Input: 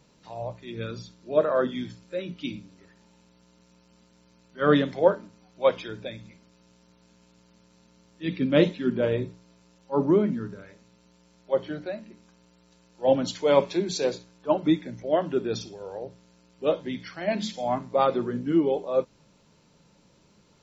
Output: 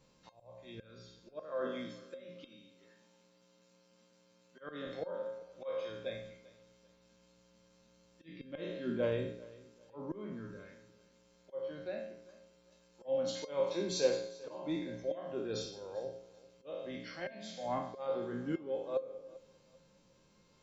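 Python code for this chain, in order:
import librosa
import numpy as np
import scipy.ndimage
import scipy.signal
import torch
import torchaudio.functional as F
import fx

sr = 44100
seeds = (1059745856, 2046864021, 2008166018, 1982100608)

y = fx.spec_trails(x, sr, decay_s=0.62)
y = fx.highpass(y, sr, hz=160.0, slope=12, at=(1.61, 4.87))
y = fx.auto_swell(y, sr, attack_ms=480.0)
y = fx.comb_fb(y, sr, f0_hz=530.0, decay_s=0.19, harmonics='all', damping=0.0, mix_pct=80)
y = fx.echo_feedback(y, sr, ms=393, feedback_pct=27, wet_db=-20.5)
y = F.gain(torch.from_numpy(y), 2.5).numpy()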